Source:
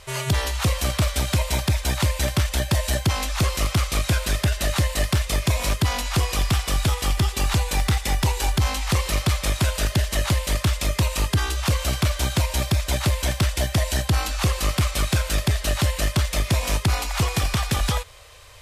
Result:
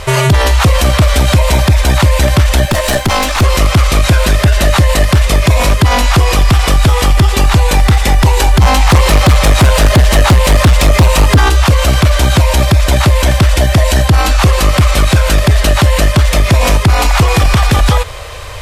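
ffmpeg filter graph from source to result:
ffmpeg -i in.wav -filter_complex "[0:a]asettb=1/sr,asplit=3[link_01][link_02][link_03];[link_01]atrim=end=2.654[link_04];[link_02]atrim=start=2.65:end=3.42,asetpts=PTS-STARTPTS,afade=type=in:duration=0.004:curve=qsin,afade=type=out:start_time=0.766:duration=0.004:curve=qsin,highpass=42,equalizer=frequency=67:width=0.8:gain=-12.5,aeval=exprs='(tanh(12.6*val(0)+0.55)-tanh(0.55))/12.6':channel_layout=same[link_05];[link_03]atrim=start=3.416[link_06];[link_04][link_05]acrossfade=duration=0.004:curve1=hsin:curve2=qsin[link_07];[link_07][link_06]acrossfade=duration=0.004:curve1=qsin:curve2=hsin,asettb=1/sr,asplit=3[link_08][link_09][link_10];[link_08]atrim=end=8.624[link_11];[link_09]atrim=start=8.62:end=11.5,asetpts=PTS-STARTPTS,afade=type=in:duration=0.004:curve=qsin,afade=type=out:start_time=2.876:duration=0.004:curve=qsin,equalizer=frequency=810:width_type=o:width=0.37:gain=4,aeval=exprs='0.251*sin(PI/2*1.58*val(0)/0.251)':channel_layout=same[link_12];[link_10]atrim=start=11.496[link_13];[link_11][link_12]acrossfade=duration=0.004:curve1=hsin:curve2=qsin[link_14];[link_14][link_13]acrossfade=duration=0.004:curve1=qsin:curve2=hsin,highshelf=frequency=2500:gain=-8.5,alimiter=level_in=24dB:limit=-1dB:release=50:level=0:latency=1,volume=-1dB" out.wav

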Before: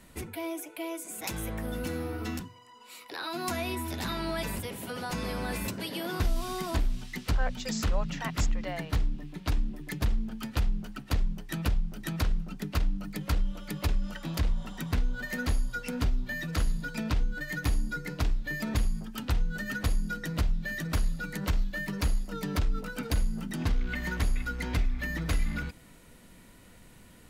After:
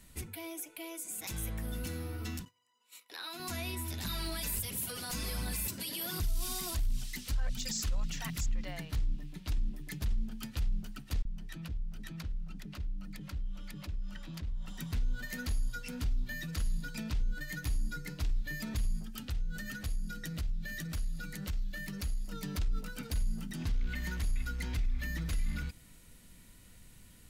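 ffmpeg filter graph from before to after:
ffmpeg -i in.wav -filter_complex "[0:a]asettb=1/sr,asplit=3[link_01][link_02][link_03];[link_01]atrim=end=2.454[link_04];[link_02]atrim=start=2.45:end=3.4,asetpts=PTS-STARTPTS,afade=type=in:duration=0.004:curve=qsin,afade=type=out:start_time=0.946:duration=0.004:curve=qsin,agate=range=-14dB:threshold=-48dB:ratio=16:release=100:detection=peak,highpass=frequency=450:poles=1,bandreject=frequency=4700:width=8.7[link_05];[link_03]atrim=start=3.396[link_06];[link_04][link_05]acrossfade=duration=0.004:curve1=hsin:curve2=qsin[link_07];[link_07][link_06]acrossfade=duration=0.004:curve1=qsin:curve2=hsin,asettb=1/sr,asplit=3[link_08][link_09][link_10];[link_08]atrim=end=4.054[link_11];[link_09]atrim=start=4.05:end=8.46,asetpts=PTS-STARTPTS,afade=type=in:duration=0.004:curve=qsin,afade=type=out:start_time=4.406:duration=0.004:curve=qsin,aemphasis=mode=production:type=cd,aphaser=in_gain=1:out_gain=1:delay=4.3:decay=0.41:speed=1.4:type=triangular[link_12];[link_10]atrim=start=8.456[link_13];[link_11][link_12]acrossfade=duration=0.004:curve1=hsin:curve2=qsin[link_14];[link_14][link_13]acrossfade=duration=0.004:curve1=qsin:curve2=hsin,asettb=1/sr,asplit=3[link_15][link_16][link_17];[link_15]atrim=end=11.224[link_18];[link_16]atrim=start=11.22:end=14.68,asetpts=PTS-STARTPTS,afade=type=in:duration=0.004:curve=qsin,afade=type=out:start_time=3.456:duration=0.004:curve=qsin,lowpass=frequency=3400:poles=1,acompressor=threshold=-36dB:ratio=3:attack=3.2:release=140:knee=1:detection=peak,acrossover=split=560[link_19][link_20];[link_19]adelay=30[link_21];[link_21][link_20]amix=inputs=2:normalize=0,atrim=end_sample=152586[link_22];[link_17]atrim=start=14.676[link_23];[link_18][link_22]acrossfade=duration=0.004:curve1=hsin:curve2=qsin[link_24];[link_24][link_23]acrossfade=duration=0.004:curve1=qsin:curve2=hsin,asettb=1/sr,asplit=3[link_25][link_26][link_27];[link_25]atrim=end=19.044[link_28];[link_26]atrim=start=19.04:end=22.25,asetpts=PTS-STARTPTS,afade=type=in:duration=0.004:curve=qsin,afade=type=out:start_time=3.206:duration=0.004:curve=qsin,bandreject=frequency=990:width=11,acompressor=threshold=-31dB:ratio=4:attack=3.2:release=140:knee=1:detection=peak[link_29];[link_27]atrim=start=22.246[link_30];[link_28][link_29]acrossfade=duration=0.004:curve1=hsin:curve2=qsin[link_31];[link_31][link_30]acrossfade=duration=0.004:curve1=qsin:curve2=hsin,equalizer=frequency=420:width=0.35:gain=-6.5,alimiter=level_in=2dB:limit=-24dB:level=0:latency=1:release=18,volume=-2dB,equalizer=frequency=1000:width=0.32:gain=-6,volume=1dB" out.wav

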